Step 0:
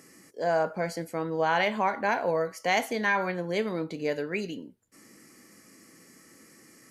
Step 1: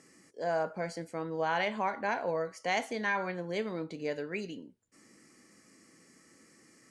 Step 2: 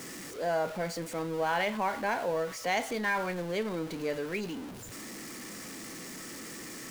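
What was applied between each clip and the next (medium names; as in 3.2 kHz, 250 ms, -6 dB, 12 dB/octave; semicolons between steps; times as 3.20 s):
steep low-pass 10 kHz 36 dB/octave; trim -5.5 dB
jump at every zero crossing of -38 dBFS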